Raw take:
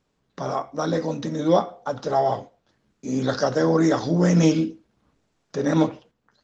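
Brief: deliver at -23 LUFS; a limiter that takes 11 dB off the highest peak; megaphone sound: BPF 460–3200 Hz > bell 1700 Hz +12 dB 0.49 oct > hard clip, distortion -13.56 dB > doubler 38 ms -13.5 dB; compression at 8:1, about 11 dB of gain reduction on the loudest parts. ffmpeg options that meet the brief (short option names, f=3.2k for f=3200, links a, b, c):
-filter_complex "[0:a]acompressor=threshold=-25dB:ratio=8,alimiter=level_in=2dB:limit=-24dB:level=0:latency=1,volume=-2dB,highpass=460,lowpass=3.2k,equalizer=f=1.7k:t=o:w=0.49:g=12,asoftclip=type=hard:threshold=-33dB,asplit=2[a][b];[b]adelay=38,volume=-13.5dB[c];[a][c]amix=inputs=2:normalize=0,volume=16.5dB"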